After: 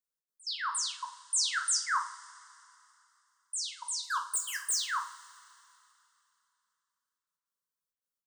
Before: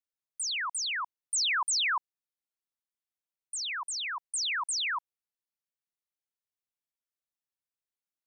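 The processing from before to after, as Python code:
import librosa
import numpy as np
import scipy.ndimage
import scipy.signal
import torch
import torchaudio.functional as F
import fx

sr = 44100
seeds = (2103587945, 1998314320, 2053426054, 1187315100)

y = fx.leveller(x, sr, passes=3, at=(4.03, 4.75))
y = fx.fixed_phaser(y, sr, hz=480.0, stages=8)
y = fx.step_gate(y, sr, bpm=161, pattern='xx.x.xxxxx.xx.x', floor_db=-24.0, edge_ms=4.5)
y = fx.rev_double_slope(y, sr, seeds[0], early_s=0.38, late_s=2.9, knee_db=-21, drr_db=2.0)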